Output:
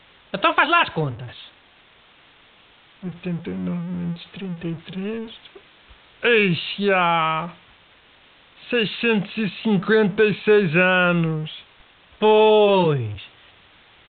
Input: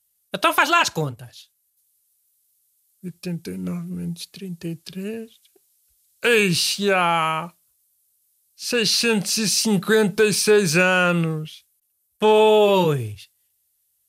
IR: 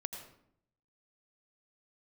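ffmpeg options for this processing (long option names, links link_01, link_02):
-af "aeval=exprs='val(0)+0.5*0.0237*sgn(val(0))':channel_layout=same,aresample=8000,aresample=44100"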